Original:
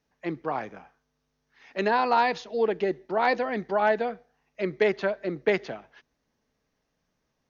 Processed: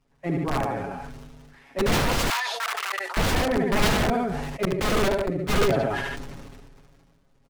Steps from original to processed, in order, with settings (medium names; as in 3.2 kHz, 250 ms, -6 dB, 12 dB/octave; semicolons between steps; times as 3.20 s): CVSD coder 64 kbps; multi-tap echo 75/140/145 ms -4/-19/-7 dB; crackle 120 per s -55 dBFS; comb 7.3 ms, depth 71%; integer overflow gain 19 dB; 4.65–5.63 s: gate -26 dBFS, range -16 dB; tilt EQ -3 dB/octave; 2.30–3.17 s: inverse Chebyshev high-pass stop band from 160 Hz, stop band 80 dB; decay stretcher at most 28 dB/s